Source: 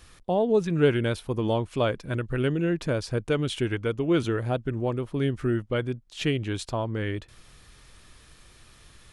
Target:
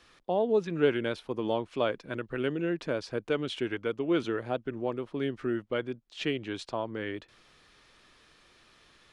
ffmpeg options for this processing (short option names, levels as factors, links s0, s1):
-filter_complex "[0:a]acrossover=split=200 5900:gain=0.178 1 0.178[s0][s1][s2];[s0][s1][s2]amix=inputs=3:normalize=0,volume=0.708"